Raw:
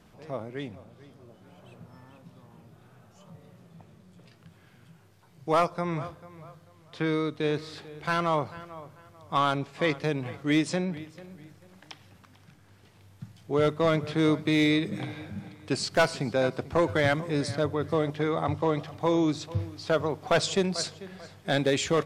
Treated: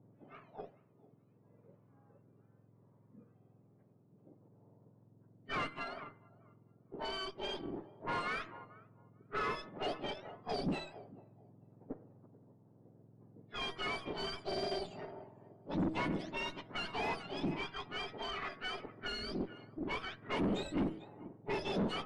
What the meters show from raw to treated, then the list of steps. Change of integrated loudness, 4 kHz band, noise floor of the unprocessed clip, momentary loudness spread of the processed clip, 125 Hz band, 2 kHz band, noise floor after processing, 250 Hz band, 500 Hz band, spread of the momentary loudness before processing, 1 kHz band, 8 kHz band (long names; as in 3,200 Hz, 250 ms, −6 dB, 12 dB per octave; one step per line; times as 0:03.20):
−12.0 dB, −7.5 dB, −57 dBFS, 16 LU, −15.0 dB, −10.0 dB, −67 dBFS, −12.0 dB, −14.5 dB, 16 LU, −10.5 dB, −20.0 dB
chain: frequency axis turned over on the octave scale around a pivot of 1,200 Hz
low-pass that shuts in the quiet parts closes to 570 Hz, open at −24 dBFS
hum removal 159.5 Hz, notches 13
tube saturation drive 32 dB, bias 0.7
head-to-tape spacing loss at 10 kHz 29 dB
level +3 dB